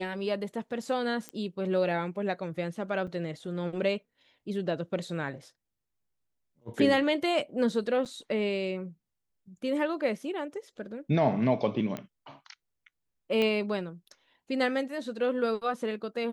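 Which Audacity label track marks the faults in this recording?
1.290000	1.290000	pop -22 dBFS
3.070000	3.080000	gap 5.9 ms
8.050000	8.060000	gap 7.5 ms
11.970000	11.970000	pop -21 dBFS
13.420000	13.420000	pop -17 dBFS

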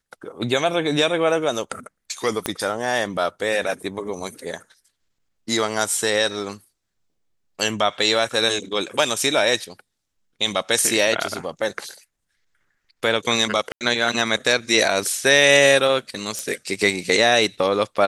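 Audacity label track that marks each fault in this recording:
2.460000	2.460000	pop -7 dBFS
13.720000	13.810000	gap 88 ms
16.390000	16.390000	pop

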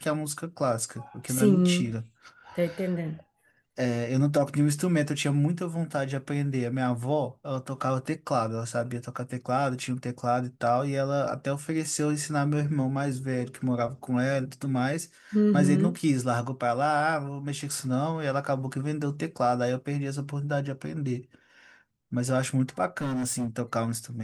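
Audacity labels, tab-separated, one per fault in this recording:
22.970000	23.480000	clipped -26 dBFS

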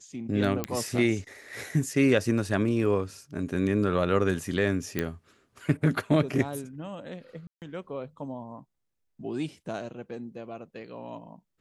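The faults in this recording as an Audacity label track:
0.640000	0.640000	pop -13 dBFS
4.990000	4.990000	pop -13 dBFS
7.470000	7.620000	gap 0.148 s

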